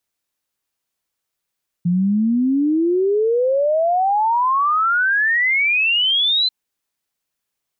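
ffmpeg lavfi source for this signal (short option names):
-f lavfi -i "aevalsrc='0.2*clip(min(t,4.64-t)/0.01,0,1)*sin(2*PI*170*4.64/log(4100/170)*(exp(log(4100/170)*t/4.64)-1))':d=4.64:s=44100"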